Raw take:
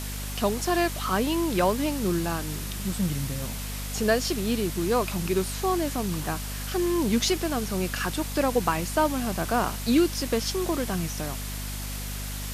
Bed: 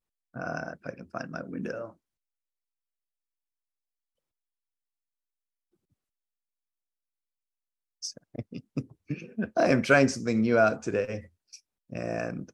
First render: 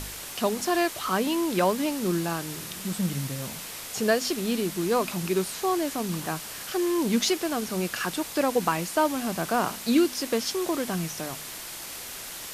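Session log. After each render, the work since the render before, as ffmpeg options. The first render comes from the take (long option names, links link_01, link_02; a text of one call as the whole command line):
ffmpeg -i in.wav -af "bandreject=frequency=50:width_type=h:width=4,bandreject=frequency=100:width_type=h:width=4,bandreject=frequency=150:width_type=h:width=4,bandreject=frequency=200:width_type=h:width=4,bandreject=frequency=250:width_type=h:width=4" out.wav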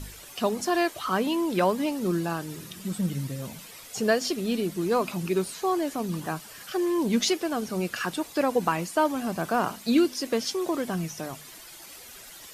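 ffmpeg -i in.wav -af "afftdn=noise_reduction=11:noise_floor=-39" out.wav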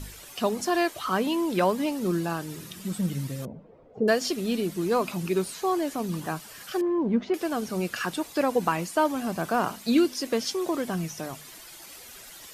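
ffmpeg -i in.wav -filter_complex "[0:a]asettb=1/sr,asplit=3[link_01][link_02][link_03];[link_01]atrim=end=3.454[link_04];[link_02]atrim=start=3.45:end=4.08,asetpts=PTS-STARTPTS,afade=type=in:duration=0.004:curve=qsin,afade=type=out:start_time=0.626:duration=0.004:curve=qsin,lowpass=frequency=510:width_type=q:width=1.8[link_05];[link_03]atrim=start=4.076[link_06];[link_04][link_05]acrossfade=duration=0.004:curve1=hsin:curve2=qsin[link_07];[link_07][link_06]acrossfade=duration=0.004:curve1=qsin:curve2=hsin,asettb=1/sr,asplit=3[link_08][link_09][link_10];[link_08]atrim=end=6.814[link_11];[link_09]atrim=start=6.81:end=7.34,asetpts=PTS-STARTPTS,afade=type=in:duration=0.004:curve=qsin,afade=type=out:start_time=0.526:duration=0.004:curve=qsin,lowpass=1200[link_12];[link_10]atrim=start=7.336[link_13];[link_11][link_12]acrossfade=duration=0.004:curve1=hsin:curve2=qsin[link_14];[link_14][link_13]acrossfade=duration=0.004:curve1=qsin:curve2=hsin" out.wav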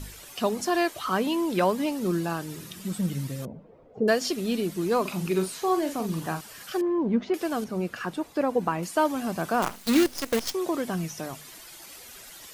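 ffmpeg -i in.wav -filter_complex "[0:a]asettb=1/sr,asplit=3[link_01][link_02][link_03];[link_01]atrim=end=5.014[link_04];[link_02]atrim=start=5.01:end=6.41,asetpts=PTS-STARTPTS,afade=type=in:duration=0.004:curve=qsin,afade=type=out:start_time=1.396:duration=0.004:curve=qsin,asplit=2[link_05][link_06];[link_06]adelay=43,volume=-8dB[link_07];[link_05][link_07]amix=inputs=2:normalize=0,atrim=end_sample=61740[link_08];[link_03]atrim=start=6.406[link_09];[link_04][link_08]acrossfade=duration=0.004:curve1=hsin:curve2=qsin[link_10];[link_10][link_09]acrossfade=duration=0.004:curve1=qsin:curve2=hsin,asettb=1/sr,asplit=3[link_11][link_12][link_13];[link_11]atrim=end=7.644[link_14];[link_12]atrim=start=7.64:end=8.83,asetpts=PTS-STARTPTS,afade=type=in:duration=0.004:curve=qsin,afade=type=out:start_time=1.186:duration=0.004:curve=qsin,highshelf=frequency=2100:gain=-11[link_15];[link_13]atrim=start=8.826[link_16];[link_14][link_15]acrossfade=duration=0.004:curve1=hsin:curve2=qsin[link_17];[link_17][link_16]acrossfade=duration=0.004:curve1=qsin:curve2=hsin,asettb=1/sr,asplit=3[link_18][link_19][link_20];[link_18]atrim=end=9.624[link_21];[link_19]atrim=start=9.62:end=10.54,asetpts=PTS-STARTPTS,afade=type=in:duration=0.004:curve=qsin,afade=type=out:start_time=0.916:duration=0.004:curve=qsin,acrusher=bits=5:dc=4:mix=0:aa=0.000001[link_22];[link_20]atrim=start=10.536[link_23];[link_21][link_22]acrossfade=duration=0.004:curve1=hsin:curve2=qsin[link_24];[link_24][link_23]acrossfade=duration=0.004:curve1=qsin:curve2=hsin" out.wav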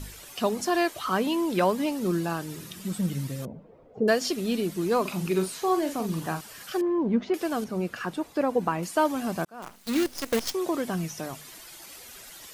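ffmpeg -i in.wav -filter_complex "[0:a]asplit=2[link_01][link_02];[link_01]atrim=end=9.45,asetpts=PTS-STARTPTS,afade=type=out:start_time=9.446:duration=0.004:curve=hsin[link_03];[link_02]atrim=start=9.45,asetpts=PTS-STARTPTS,afade=type=in:duration=0.91[link_04];[link_03][link_04]concat=n=2:v=0:a=1" out.wav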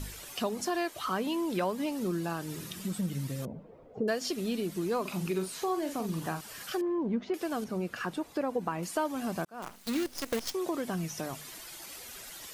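ffmpeg -i in.wav -af "acompressor=threshold=-33dB:ratio=2" out.wav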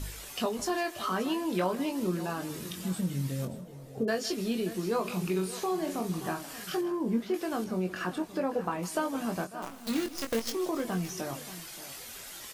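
ffmpeg -i in.wav -filter_complex "[0:a]asplit=2[link_01][link_02];[link_02]adelay=22,volume=-6dB[link_03];[link_01][link_03]amix=inputs=2:normalize=0,aecho=1:1:157|578:0.141|0.168" out.wav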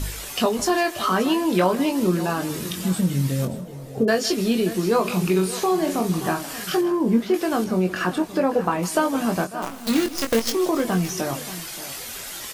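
ffmpeg -i in.wav -af "volume=10dB" out.wav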